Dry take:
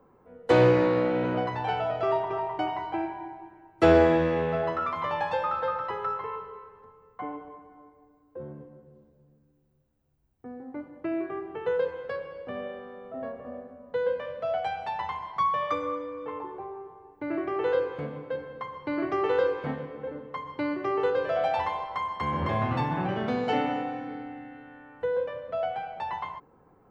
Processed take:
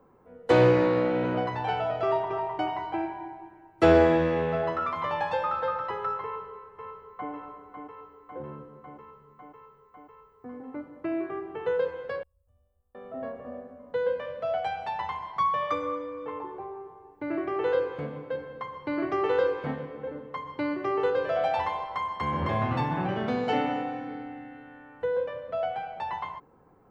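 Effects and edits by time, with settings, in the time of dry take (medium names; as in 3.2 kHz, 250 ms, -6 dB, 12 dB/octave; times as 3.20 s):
6.23–7.32 s: echo throw 550 ms, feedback 80%, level -7 dB
12.23–12.95 s: inverse Chebyshev band-stop 140–4600 Hz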